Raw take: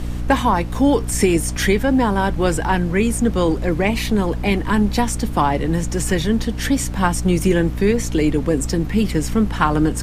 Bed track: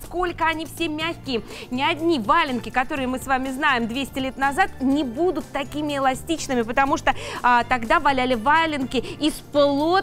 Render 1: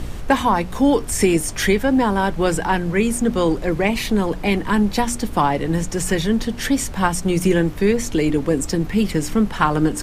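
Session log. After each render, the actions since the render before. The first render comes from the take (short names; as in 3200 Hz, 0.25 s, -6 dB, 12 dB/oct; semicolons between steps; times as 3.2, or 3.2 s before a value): de-hum 60 Hz, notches 5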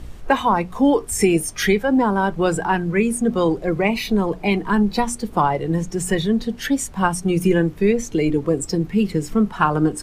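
noise print and reduce 10 dB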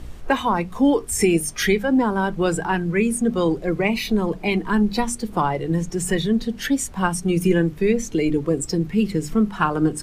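notches 50/100/150/200 Hz; dynamic EQ 800 Hz, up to -4 dB, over -32 dBFS, Q 0.88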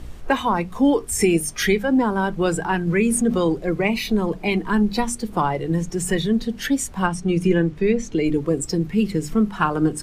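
2.87–3.38 fast leveller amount 50%; 7.06–8.25 air absorption 65 m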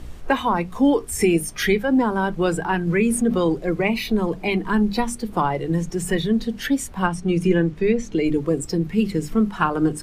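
dynamic EQ 7000 Hz, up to -5 dB, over -41 dBFS, Q 1.2; notches 50/100/150/200 Hz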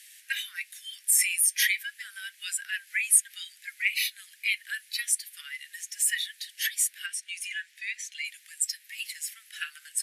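steep high-pass 1700 Hz 72 dB/oct; bell 11000 Hz +11.5 dB 0.77 oct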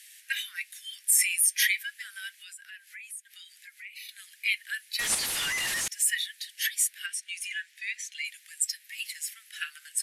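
2.38–4.09 compressor 2.5:1, threshold -49 dBFS; 4.99–5.88 delta modulation 64 kbps, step -23.5 dBFS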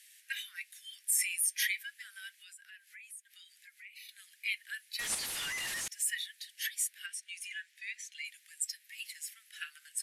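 gain -7.5 dB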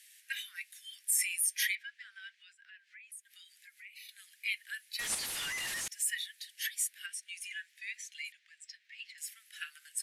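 1.75–3.12 air absorption 150 m; 8.32–9.18 air absorption 170 m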